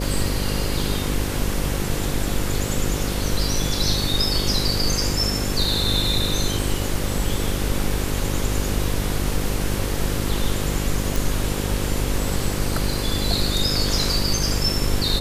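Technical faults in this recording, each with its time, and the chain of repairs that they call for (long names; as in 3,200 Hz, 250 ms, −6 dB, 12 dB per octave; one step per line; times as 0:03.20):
mains buzz 50 Hz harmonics 11 −26 dBFS
0:11.16: click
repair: click removal
hum removal 50 Hz, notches 11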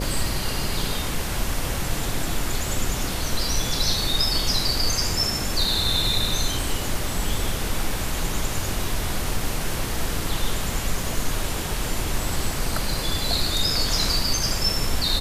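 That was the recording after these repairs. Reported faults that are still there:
none of them is left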